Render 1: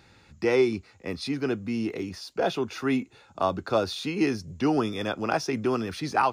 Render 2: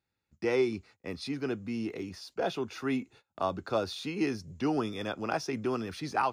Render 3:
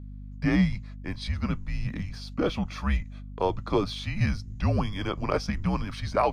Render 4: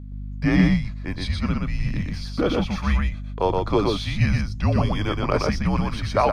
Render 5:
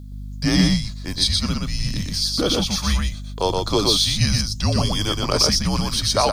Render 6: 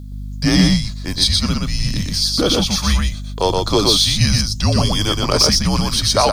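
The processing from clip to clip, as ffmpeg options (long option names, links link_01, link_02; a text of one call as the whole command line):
ffmpeg -i in.wav -af "agate=range=-24dB:threshold=-48dB:ratio=16:detection=peak,volume=-5.5dB" out.wav
ffmpeg -i in.wav -af "afreqshift=-200,aeval=exprs='val(0)+0.00631*(sin(2*PI*50*n/s)+sin(2*PI*2*50*n/s)/2+sin(2*PI*3*50*n/s)/3+sin(2*PI*4*50*n/s)/4+sin(2*PI*5*50*n/s)/5)':channel_layout=same,highshelf=frequency=7400:gain=-9.5,volume=5dB" out.wav
ffmpeg -i in.wav -af "aecho=1:1:121:0.708,volume=4dB" out.wav
ffmpeg -i in.wav -af "aexciter=amount=7.5:drive=6.2:freq=3400" out.wav
ffmpeg -i in.wav -af "asoftclip=type=tanh:threshold=-5.5dB,volume=4.5dB" out.wav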